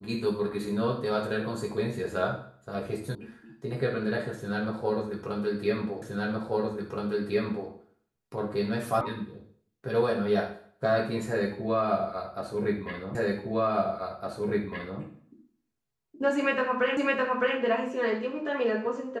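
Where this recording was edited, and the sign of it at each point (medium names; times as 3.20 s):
3.15 s: sound stops dead
6.02 s: repeat of the last 1.67 s
9.01 s: sound stops dead
13.15 s: repeat of the last 1.86 s
16.97 s: repeat of the last 0.61 s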